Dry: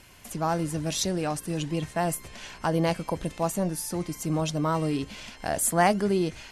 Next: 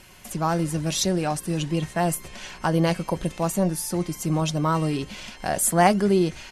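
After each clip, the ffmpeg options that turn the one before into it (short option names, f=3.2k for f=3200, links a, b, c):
-af "aecho=1:1:5.4:0.31,volume=3dB"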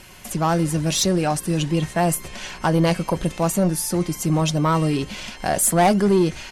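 -af "aeval=exprs='(tanh(5.62*val(0)+0.05)-tanh(0.05))/5.62':c=same,volume=5dB"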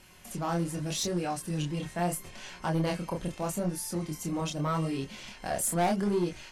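-af "flanger=delay=22.5:depth=6.9:speed=0.79,asoftclip=type=hard:threshold=-14dB,volume=-8dB"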